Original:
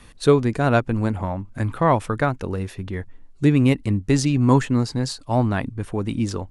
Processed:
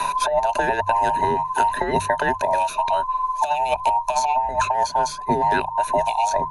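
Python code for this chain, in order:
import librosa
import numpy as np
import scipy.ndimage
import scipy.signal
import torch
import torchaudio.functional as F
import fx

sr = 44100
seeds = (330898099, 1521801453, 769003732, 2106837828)

y = fx.band_invert(x, sr, width_hz=1000)
y = fx.hum_notches(y, sr, base_hz=50, count=3)
y = fx.over_compress(y, sr, threshold_db=-20.0, ratio=-0.5)
y = fx.ripple_eq(y, sr, per_octave=1.5, db=12)
y = fx.band_squash(y, sr, depth_pct=100)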